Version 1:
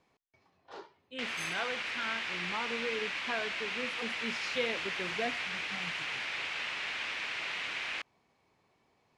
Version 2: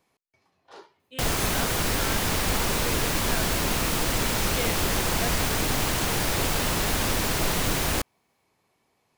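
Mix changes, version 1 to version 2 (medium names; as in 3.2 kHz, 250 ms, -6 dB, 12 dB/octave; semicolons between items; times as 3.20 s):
background: remove band-pass filter 2.4 kHz, Q 2.3; master: remove distance through air 87 m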